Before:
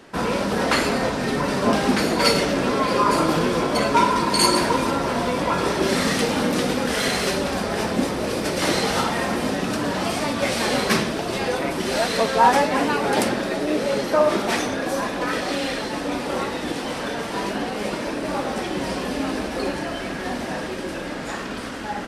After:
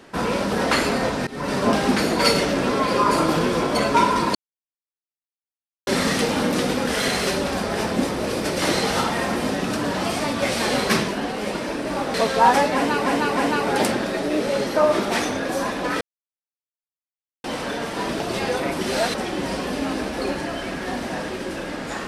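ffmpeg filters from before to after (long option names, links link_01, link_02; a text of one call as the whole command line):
ffmpeg -i in.wav -filter_complex "[0:a]asplit=12[link_01][link_02][link_03][link_04][link_05][link_06][link_07][link_08][link_09][link_10][link_11][link_12];[link_01]atrim=end=1.27,asetpts=PTS-STARTPTS,afade=type=out:start_time=1.266:duration=0.004:curve=hsin:silence=0.0668344[link_13];[link_02]atrim=start=1.27:end=4.35,asetpts=PTS-STARTPTS,afade=type=in:duration=0.27:silence=0.0668344,afade=type=out:start_time=3.076:duration=0.004:curve=hsin[link_14];[link_03]atrim=start=4.35:end=5.87,asetpts=PTS-STARTPTS,volume=0[link_15];[link_04]atrim=start=5.87:end=11.082,asetpts=PTS-STARTPTS,afade=type=in:duration=0.004:curve=hsin[link_16];[link_05]atrim=start=17.458:end=18.522[link_17];[link_06]atrim=start=12.128:end=13.052[link_18];[link_07]atrim=start=12.738:end=13.052[link_19];[link_08]atrim=start=12.738:end=15.38,asetpts=PTS-STARTPTS,afade=type=out:start_time=2.638:duration=0.004:curve=hsin[link_20];[link_09]atrim=start=15.38:end=16.81,asetpts=PTS-STARTPTS,volume=0[link_21];[link_10]atrim=start=16.81:end=17.462,asetpts=PTS-STARTPTS,afade=type=in:duration=0.004:curve=hsin[link_22];[link_11]atrim=start=11.078:end=12.132[link_23];[link_12]atrim=start=18.518[link_24];[link_13][link_14][link_15][link_16]concat=n=4:v=0:a=1[link_25];[link_25][link_17]acrossfade=duration=0.004:curve1=hsin:curve2=hsin[link_26];[link_26][link_18]acrossfade=duration=0.004:curve1=hsin:curve2=hsin[link_27];[link_27][link_19]acrossfade=duration=0.004:curve1=hsin:curve2=hsin[link_28];[link_20][link_21][link_22]concat=n=3:v=0:a=1[link_29];[link_28][link_29]acrossfade=duration=0.004:curve1=hsin:curve2=hsin[link_30];[link_30][link_23]acrossfade=duration=0.004:curve1=hsin:curve2=hsin[link_31];[link_31][link_24]acrossfade=duration=0.004:curve1=hsin:curve2=hsin" out.wav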